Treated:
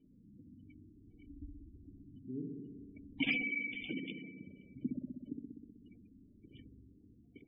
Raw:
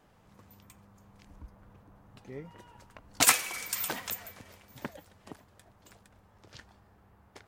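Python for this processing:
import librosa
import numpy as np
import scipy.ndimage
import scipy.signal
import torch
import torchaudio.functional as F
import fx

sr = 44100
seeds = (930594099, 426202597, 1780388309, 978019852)

p1 = fx.highpass(x, sr, hz=120.0, slope=24, at=(3.97, 4.47))
p2 = p1 + fx.echo_single(p1, sr, ms=106, db=-23.5, dry=0)
p3 = fx.dynamic_eq(p2, sr, hz=1900.0, q=0.92, threshold_db=-52.0, ratio=4.0, max_db=6)
p4 = fx.formant_cascade(p3, sr, vowel='i')
p5 = (np.mod(10.0 ** (34.0 / 20.0) * p4 + 1.0, 2.0) - 1.0) / 10.0 ** (34.0 / 20.0)
p6 = p4 + (p5 * librosa.db_to_amplitude(-3.0))
p7 = fx.comb(p6, sr, ms=2.7, depth=0.58, at=(0.63, 1.86))
p8 = fx.echo_wet_lowpass(p7, sr, ms=63, feedback_pct=77, hz=1000.0, wet_db=-4.0)
p9 = fx.spec_gate(p8, sr, threshold_db=-20, keep='strong')
y = p9 * librosa.db_to_amplitude(3.5)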